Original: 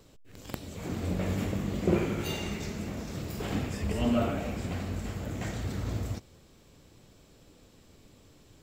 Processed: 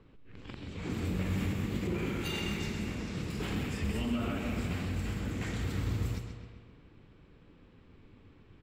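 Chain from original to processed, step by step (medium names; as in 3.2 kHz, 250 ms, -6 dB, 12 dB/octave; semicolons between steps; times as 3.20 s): speakerphone echo 340 ms, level -15 dB; peak limiter -24.5 dBFS, peak gain reduction 10 dB; fifteen-band graphic EQ 630 Hz -9 dB, 2.5 kHz +3 dB, 6.3 kHz -4 dB; on a send: feedback delay 130 ms, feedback 57%, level -8.5 dB; on the sum: level-controlled noise filter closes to 1.8 kHz, open at -30 dBFS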